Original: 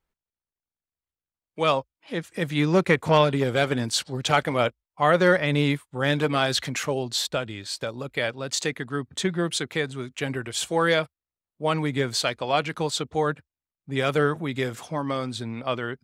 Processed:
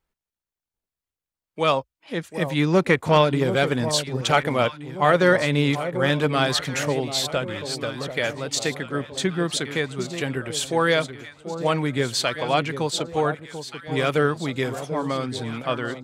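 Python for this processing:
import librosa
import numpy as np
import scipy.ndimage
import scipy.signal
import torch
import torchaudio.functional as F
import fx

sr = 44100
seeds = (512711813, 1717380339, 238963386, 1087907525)

y = fx.echo_alternate(x, sr, ms=739, hz=960.0, feedback_pct=65, wet_db=-9.5)
y = y * 10.0 ** (1.5 / 20.0)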